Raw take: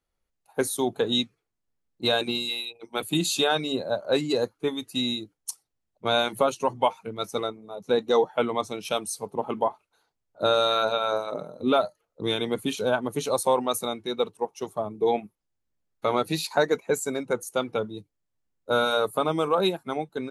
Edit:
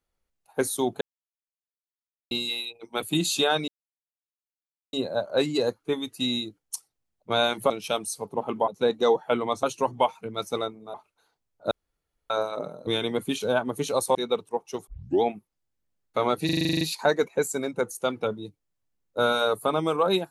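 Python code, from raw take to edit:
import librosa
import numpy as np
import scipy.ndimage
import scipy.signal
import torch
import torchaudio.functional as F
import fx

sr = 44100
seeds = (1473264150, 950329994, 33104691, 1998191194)

y = fx.edit(x, sr, fx.silence(start_s=1.01, length_s=1.3),
    fx.insert_silence(at_s=3.68, length_s=1.25),
    fx.swap(start_s=6.45, length_s=1.31, other_s=8.71, other_length_s=0.98),
    fx.room_tone_fill(start_s=10.46, length_s=0.59),
    fx.cut(start_s=11.62, length_s=0.62),
    fx.cut(start_s=13.52, length_s=0.51),
    fx.tape_start(start_s=14.75, length_s=0.35),
    fx.stutter(start_s=16.33, slice_s=0.04, count=10), tone=tone)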